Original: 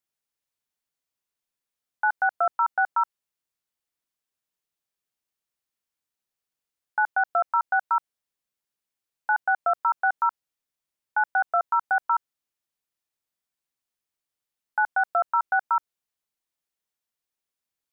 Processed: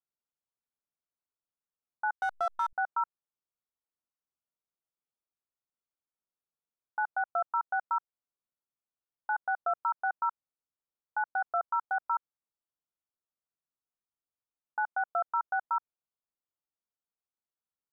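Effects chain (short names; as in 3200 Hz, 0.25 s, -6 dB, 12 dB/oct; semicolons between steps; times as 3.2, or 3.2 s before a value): steep low-pass 1500 Hz 72 dB/oct; 2.12–2.73 backlash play -31.5 dBFS; gain -7 dB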